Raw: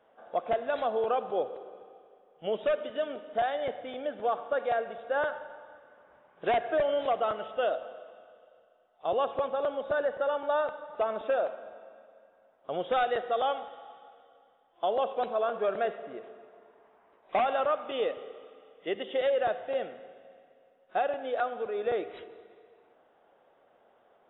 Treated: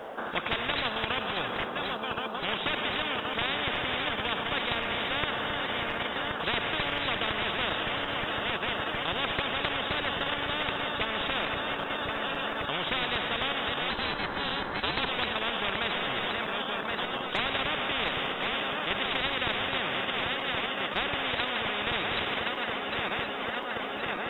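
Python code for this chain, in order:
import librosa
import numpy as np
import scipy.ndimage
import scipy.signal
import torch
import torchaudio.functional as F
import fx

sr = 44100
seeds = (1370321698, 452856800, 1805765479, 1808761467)

p1 = fx.reverse_delay_fb(x, sr, ms=537, feedback_pct=83, wet_db=-13)
p2 = fx.level_steps(p1, sr, step_db=14)
p3 = p1 + F.gain(torch.from_numpy(p2), 2.0).numpy()
p4 = fx.ring_mod(p3, sr, carrier_hz=280.0, at=(13.9, 15.09))
y = fx.spectral_comp(p4, sr, ratio=10.0)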